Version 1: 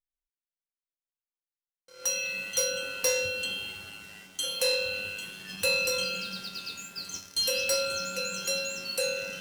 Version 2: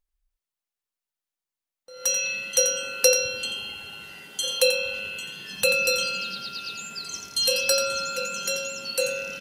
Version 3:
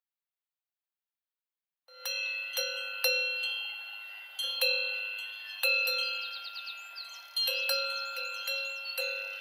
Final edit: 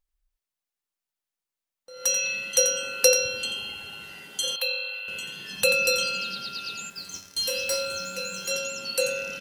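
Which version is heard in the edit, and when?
2
4.56–5.08 s: from 3
6.90–8.51 s: from 1

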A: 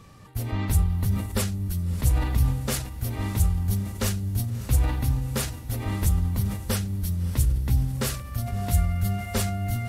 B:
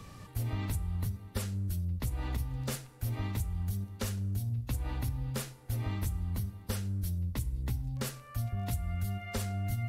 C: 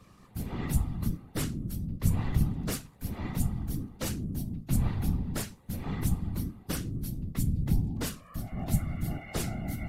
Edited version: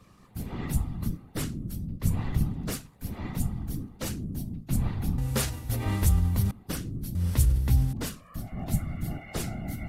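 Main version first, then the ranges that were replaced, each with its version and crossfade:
C
5.18–6.51 s: from A
7.15–7.93 s: from A
not used: B

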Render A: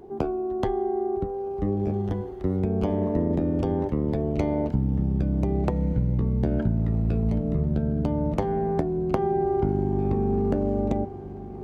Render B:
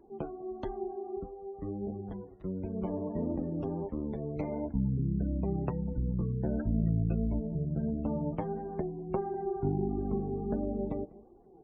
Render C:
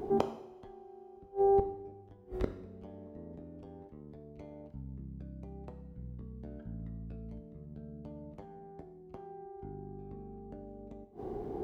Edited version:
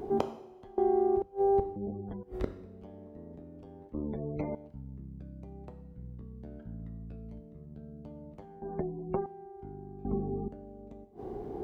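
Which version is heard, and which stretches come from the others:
C
0.78–1.22 s: from A
1.76–2.23 s: from B
3.94–4.55 s: from B
8.62–9.26 s: from B
10.05–10.48 s: from B

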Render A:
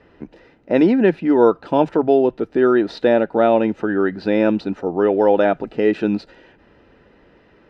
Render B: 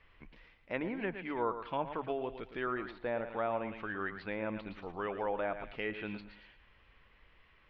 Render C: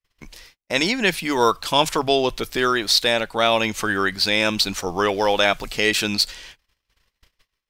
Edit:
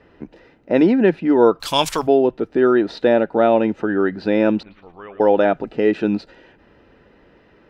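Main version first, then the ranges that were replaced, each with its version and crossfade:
A
1.60–2.07 s: from C
4.63–5.20 s: from B

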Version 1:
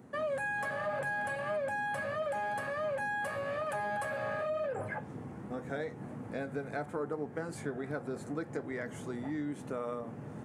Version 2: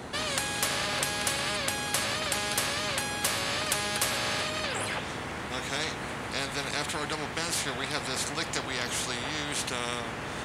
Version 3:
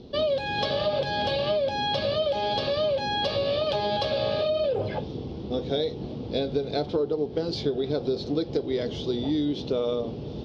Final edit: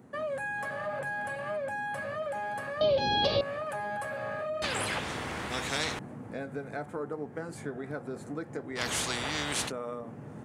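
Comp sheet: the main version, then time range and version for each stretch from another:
1
2.81–3.41 s: from 3
4.62–5.99 s: from 2
8.78–9.69 s: from 2, crossfade 0.06 s

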